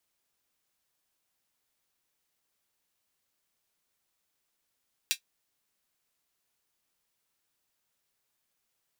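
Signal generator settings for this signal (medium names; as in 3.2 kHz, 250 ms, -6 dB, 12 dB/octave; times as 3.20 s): closed hi-hat, high-pass 2.8 kHz, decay 0.10 s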